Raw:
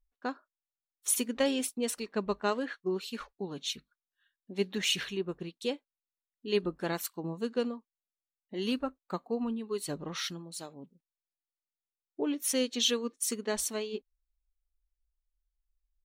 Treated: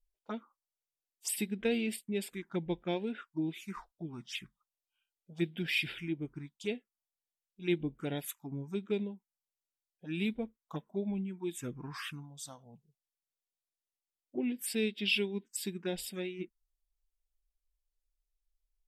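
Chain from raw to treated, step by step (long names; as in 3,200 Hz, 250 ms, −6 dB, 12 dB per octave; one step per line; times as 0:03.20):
phaser swept by the level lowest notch 250 Hz, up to 1,400 Hz, full sweep at −29.5 dBFS
speed change −15%
level −1.5 dB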